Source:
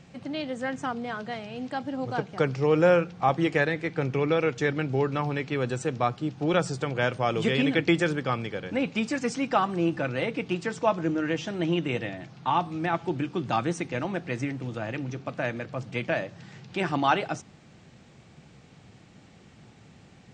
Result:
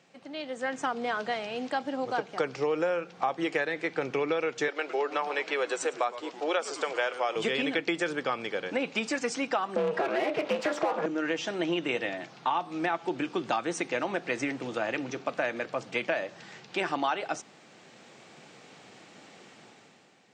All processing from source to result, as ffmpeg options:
-filter_complex "[0:a]asettb=1/sr,asplit=3[a][b][c];[a]atrim=end=4.684[d];[b]atrim=start=4.68:end=7.36,asetpts=PTS-STARTPTS,afade=t=in:d=0.004:c=qsin,afade=t=out:st=2.676:d=0.004:c=qsin,highpass=f=400:w=0.5412,highpass=f=400:w=1.3066,asplit=7[e][f][g][h][i][j][k];[f]adelay=108,afreqshift=-120,volume=-16dB[l];[g]adelay=216,afreqshift=-240,volume=-20.3dB[m];[h]adelay=324,afreqshift=-360,volume=-24.6dB[n];[i]adelay=432,afreqshift=-480,volume=-28.9dB[o];[j]adelay=540,afreqshift=-600,volume=-33.2dB[p];[k]adelay=648,afreqshift=-720,volume=-37.5dB[q];[e][l][m][n][o][p][q]amix=inputs=7:normalize=0,atrim=end_sample=118188[r];[c]atrim=start=7.356[s];[d][r]acrossfade=d=0.004:c1=hsin:c2=qsin[t];[t][s]acrossfade=d=0.004:c1=qsin:c2=hsin,asettb=1/sr,asplit=3[u][v][w];[u]atrim=end=9.764[x];[v]atrim=start=9.76:end=11.06,asetpts=PTS-STARTPTS,afade=t=in:d=0.004:c=qsin,afade=t=out:st=1.296:d=0.004:c=qsin,asplit=2[y][z];[z]highpass=f=720:p=1,volume=27dB,asoftclip=type=tanh:threshold=-11.5dB[aa];[y][aa]amix=inputs=2:normalize=0,lowpass=f=1.2k:p=1,volume=-6dB,highpass=f=370:t=q:w=1.8,aeval=exprs='val(0)*sin(2*PI*150*n/s)':c=same[ab];[w]atrim=start=11.056[ac];[x][ab]acrossfade=d=0.004:c1=hsin:c2=qsin[ad];[ad][ac]acrossfade=d=0.004:c1=qsin:c2=hsin,dynaudnorm=f=130:g=11:m=11.5dB,highpass=360,acompressor=threshold=-20dB:ratio=6,volume=-5dB"

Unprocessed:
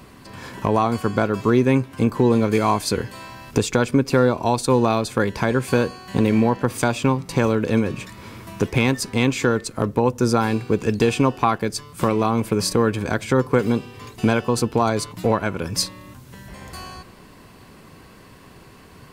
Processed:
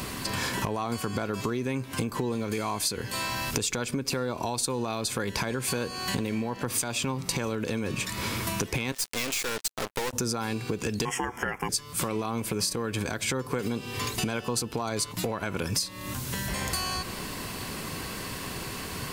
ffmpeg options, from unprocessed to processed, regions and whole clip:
-filter_complex "[0:a]asettb=1/sr,asplit=3[a][b][c];[a]atrim=end=8.924[d];[b]atrim=start=8.92:end=10.13,asetpts=PTS-STARTPTS,afade=t=in:d=0.004:c=qsin,afade=t=out:st=1.206:d=0.004:c=qsin,highpass=460,acrusher=bits=4:mix=0:aa=0.5,aeval=exprs='(tanh(25.1*val(0)+0.7)-tanh(0.7))/25.1':c=same[e];[c]atrim=start=10.126[f];[d][e]acrossfade=d=0.004:c1=hsin:c2=qsin[g];[g][f]acrossfade=d=0.004:c1=qsin:c2=hsin,asettb=1/sr,asplit=3[h][i][j];[h]atrim=end=11.054[k];[i]atrim=start=11.05:end=11.69,asetpts=PTS-STARTPTS,afade=t=in:d=0.004:c=qsin,afade=t=out:st=0.636:d=0.004:c=qsin,equalizer=f=78:w=0.59:g=-6,aeval=exprs='val(0)*sin(2*PI*610*n/s)':c=same,asuperstop=centerf=4000:order=4:qfactor=1.4[l];[j]atrim=start=11.686[m];[k][l]acrossfade=d=0.004:c1=hsin:c2=qsin[n];[n][m]acrossfade=d=0.004:c1=qsin:c2=hsin,alimiter=limit=-16.5dB:level=0:latency=1:release=143,highshelf=f=2.5k:g=10,acompressor=threshold=-35dB:ratio=6,volume=8dB"

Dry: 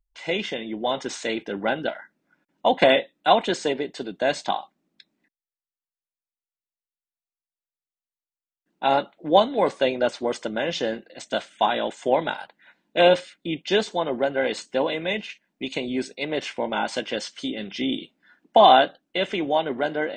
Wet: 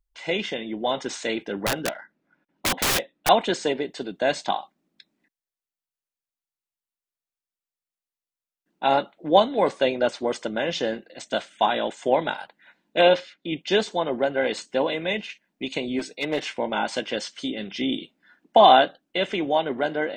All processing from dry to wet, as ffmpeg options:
-filter_complex "[0:a]asettb=1/sr,asplit=3[a][b][c];[a]atrim=end=1.664[d];[b]atrim=start=1.66:end=3.29,asetpts=PTS-STARTPTS,afade=t=in:d=0.004:c=qsin,afade=t=out:st=1.626:d=0.004:c=qsin,adynamicsmooth=sensitivity=5.5:basefreq=5k,aeval=exprs='(mod(7.08*val(0)+1,2)-1)/7.08':c=same[e];[c]atrim=start=3.286[f];[d][e]acrossfade=d=0.004:c1=hsin:c2=qsin[g];[g][f]acrossfade=d=0.004:c1=qsin:c2=hsin,asettb=1/sr,asplit=3[h][i][j];[h]atrim=end=13.014[k];[i]atrim=start=13.01:end=13.52,asetpts=PTS-STARTPTS,afade=t=in:d=0.004:c=qsin,afade=t=out:st=0.506:d=0.004:c=qsin,lowpass=f=6.1k:w=0.5412,lowpass=f=6.1k:w=1.3066,lowshelf=f=160:g=-8[l];[j]atrim=start=13.516[m];[k][l]acrossfade=d=0.004:c1=hsin:c2=qsin[n];[n][m]acrossfade=d=0.004:c1=qsin:c2=hsin,asettb=1/sr,asplit=3[o][p][q];[o]atrim=end=15.994[r];[p]atrim=start=15.99:end=16.54,asetpts=PTS-STARTPTS,afade=t=in:d=0.004:c=qsin,afade=t=out:st=0.546:d=0.004:c=qsin,aeval=exprs='clip(val(0),-1,0.075)':c=same,lowshelf=f=120:g=-8,aecho=1:1:6.5:0.47,atrim=end_sample=24255[s];[q]atrim=start=16.536[t];[r][s]acrossfade=d=0.004:c1=hsin:c2=qsin[u];[u][t]acrossfade=d=0.004:c1=qsin:c2=hsin"

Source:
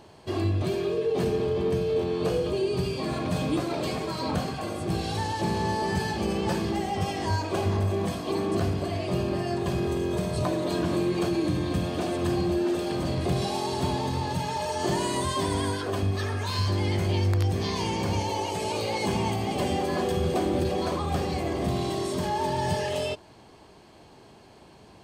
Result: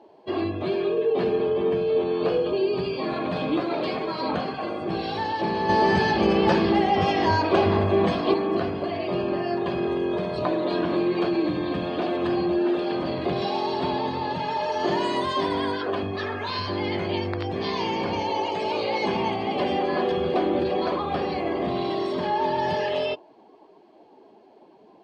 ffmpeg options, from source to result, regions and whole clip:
-filter_complex "[0:a]asettb=1/sr,asplit=3[a][b][c];[a]atrim=end=5.694[d];[b]atrim=start=5.69:end=8.34,asetpts=PTS-STARTPTS,afade=t=in:d=0.004:c=qsin,afade=t=out:st=2.646:d=0.004:c=qsin,lowshelf=f=110:g=8,acontrast=23[e];[c]atrim=start=8.336[f];[d][e]acrossfade=d=0.004:c1=hsin:c2=qsin[g];[g][f]acrossfade=d=0.004:c1=qsin:c2=hsin,acrossover=split=210 4900:gain=0.158 1 0.1[h][i][j];[h][i][j]amix=inputs=3:normalize=0,afftdn=nr=14:nf=-48,volume=4dB"

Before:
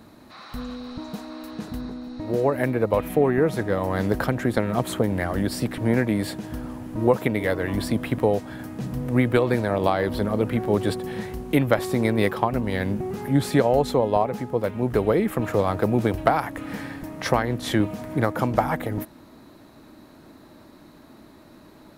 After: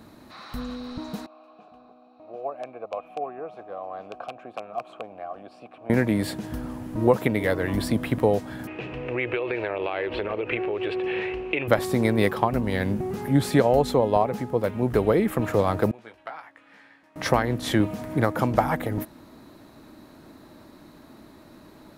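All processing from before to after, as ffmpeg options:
-filter_complex "[0:a]asettb=1/sr,asplit=3[a][b][c];[a]atrim=end=1.264[d];[b]atrim=start=1.26:end=5.9,asetpts=PTS-STARTPTS,afade=t=in:d=0.004:c=qsin,afade=t=out:st=4.636:d=0.004:c=qsin,highshelf=f=9.6k:g=-9.5,aeval=exprs='(mod(2.66*val(0)+1,2)-1)/2.66':c=same,asplit=3[e][f][g];[e]bandpass=f=730:t=q:w=8,volume=0dB[h];[f]bandpass=f=1.09k:t=q:w=8,volume=-6dB[i];[g]bandpass=f=2.44k:t=q:w=8,volume=-9dB[j];[h][i][j]amix=inputs=3:normalize=0[k];[c]atrim=start=5.896[l];[d][k]acrossfade=d=0.004:c1=hsin:c2=qsin[m];[m][l]acrossfade=d=0.004:c1=qsin:c2=hsin,asettb=1/sr,asplit=3[n][o][p];[n]atrim=end=8.674[q];[o]atrim=start=8.67:end=11.68,asetpts=PTS-STARTPTS,afade=t=in:d=0.004:c=qsin,afade=t=out:st=3.006:d=0.004:c=qsin,lowshelf=f=290:t=q:w=3:g=-7.5,acompressor=threshold=-24dB:ratio=10:attack=3.2:release=140:knee=1:detection=peak,lowpass=f=2.6k:t=q:w=8.4[r];[p]atrim=start=11.676[s];[q][r]acrossfade=d=0.004:c1=hsin:c2=qsin[t];[t][s]acrossfade=d=0.004:c1=qsin:c2=hsin,asettb=1/sr,asplit=3[u][v][w];[u]atrim=end=15.914[x];[v]atrim=start=15.91:end=17.16,asetpts=PTS-STARTPTS,afade=t=in:d=0.004:c=qsin,afade=t=out:st=1.246:d=0.004:c=qsin,lowpass=2.1k,aderivative,asplit=2[y][z];[z]adelay=18,volume=-7dB[aa];[y][aa]amix=inputs=2:normalize=0,atrim=end_sample=55125[ab];[w]atrim=start=17.156[ac];[x][ab]acrossfade=d=0.004:c1=hsin:c2=qsin[ad];[ad][ac]acrossfade=d=0.004:c1=qsin:c2=hsin"

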